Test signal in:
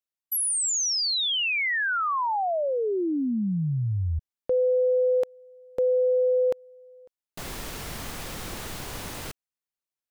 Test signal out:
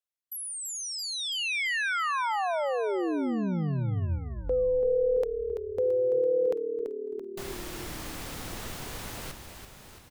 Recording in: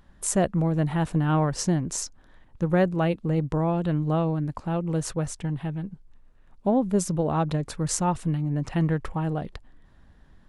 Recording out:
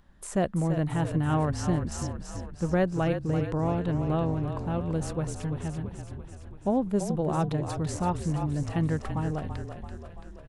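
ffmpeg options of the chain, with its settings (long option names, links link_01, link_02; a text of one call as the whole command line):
ffmpeg -i in.wav -filter_complex "[0:a]acrossover=split=2700[link_01][link_02];[link_02]acompressor=threshold=-33dB:ratio=4:attack=1:release=60[link_03];[link_01][link_03]amix=inputs=2:normalize=0,asplit=2[link_04][link_05];[link_05]asplit=8[link_06][link_07][link_08][link_09][link_10][link_11][link_12][link_13];[link_06]adelay=335,afreqshift=-37,volume=-8dB[link_14];[link_07]adelay=670,afreqshift=-74,volume=-12dB[link_15];[link_08]adelay=1005,afreqshift=-111,volume=-16dB[link_16];[link_09]adelay=1340,afreqshift=-148,volume=-20dB[link_17];[link_10]adelay=1675,afreqshift=-185,volume=-24.1dB[link_18];[link_11]adelay=2010,afreqshift=-222,volume=-28.1dB[link_19];[link_12]adelay=2345,afreqshift=-259,volume=-32.1dB[link_20];[link_13]adelay=2680,afreqshift=-296,volume=-36.1dB[link_21];[link_14][link_15][link_16][link_17][link_18][link_19][link_20][link_21]amix=inputs=8:normalize=0[link_22];[link_04][link_22]amix=inputs=2:normalize=0,volume=-3.5dB" out.wav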